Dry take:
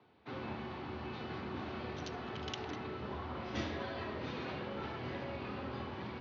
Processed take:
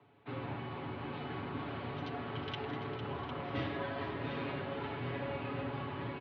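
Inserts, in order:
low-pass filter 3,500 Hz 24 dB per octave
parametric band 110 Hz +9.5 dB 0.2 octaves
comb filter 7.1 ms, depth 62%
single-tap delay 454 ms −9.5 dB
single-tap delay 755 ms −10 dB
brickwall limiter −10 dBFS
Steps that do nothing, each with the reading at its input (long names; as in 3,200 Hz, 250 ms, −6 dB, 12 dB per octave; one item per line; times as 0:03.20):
brickwall limiter −10 dBFS: peak of its input −23.5 dBFS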